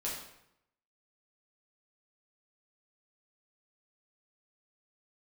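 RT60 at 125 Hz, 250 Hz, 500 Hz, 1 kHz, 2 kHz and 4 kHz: 0.90 s, 0.85 s, 0.80 s, 0.80 s, 0.75 s, 0.65 s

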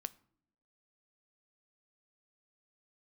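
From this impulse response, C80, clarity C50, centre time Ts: 25.0 dB, 21.5 dB, 2 ms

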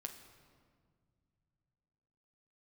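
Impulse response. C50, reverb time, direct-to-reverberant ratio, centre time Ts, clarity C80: 8.5 dB, 2.0 s, 4.5 dB, 24 ms, 10.0 dB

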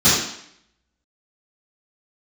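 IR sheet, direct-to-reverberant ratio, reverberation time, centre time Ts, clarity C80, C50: -16.0 dB, 0.70 s, 61 ms, 4.0 dB, 0.0 dB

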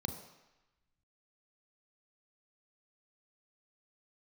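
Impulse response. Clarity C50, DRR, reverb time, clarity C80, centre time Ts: 8.5 dB, 6.0 dB, 1.0 s, 10.5 dB, 23 ms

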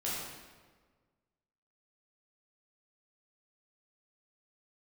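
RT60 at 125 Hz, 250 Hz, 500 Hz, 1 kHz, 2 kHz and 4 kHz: 1.8 s, 1.7 s, 1.6 s, 1.4 s, 1.2 s, 1.1 s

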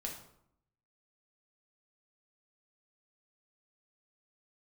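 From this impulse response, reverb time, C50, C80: 0.70 s, 6.0 dB, 9.5 dB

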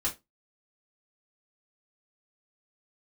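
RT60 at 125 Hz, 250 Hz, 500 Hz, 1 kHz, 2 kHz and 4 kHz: 0.20 s, 0.25 s, 0.20 s, 0.20 s, 0.20 s, 0.15 s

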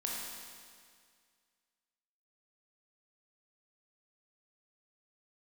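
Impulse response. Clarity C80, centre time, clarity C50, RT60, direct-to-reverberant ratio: 1.0 dB, 110 ms, -1.0 dB, 2.0 s, -3.5 dB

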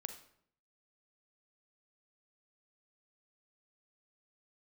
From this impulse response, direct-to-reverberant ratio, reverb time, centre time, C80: 7.5 dB, 0.65 s, 13 ms, 12.5 dB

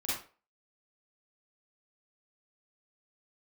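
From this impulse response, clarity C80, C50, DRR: 7.0 dB, -0.5 dB, -9.5 dB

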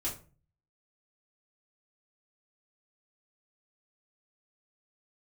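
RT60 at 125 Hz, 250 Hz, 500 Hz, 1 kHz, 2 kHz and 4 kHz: 0.70 s, 0.50 s, 0.40 s, 0.35 s, 0.30 s, 0.25 s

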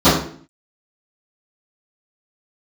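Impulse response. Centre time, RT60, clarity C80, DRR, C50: 47 ms, 0.50 s, 8.0 dB, -18.5 dB, 3.0 dB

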